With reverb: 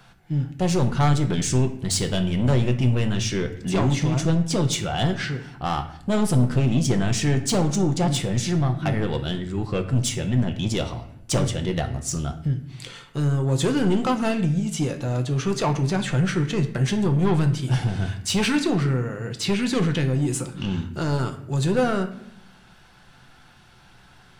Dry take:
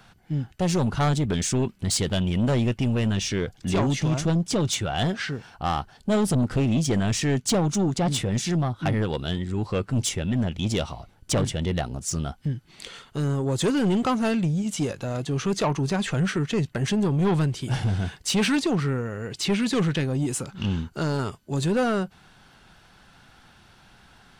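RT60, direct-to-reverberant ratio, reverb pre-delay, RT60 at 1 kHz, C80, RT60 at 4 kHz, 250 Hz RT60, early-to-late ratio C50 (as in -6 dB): 0.70 s, 5.5 dB, 5 ms, 0.65 s, 14.0 dB, 0.55 s, 1.1 s, 11.5 dB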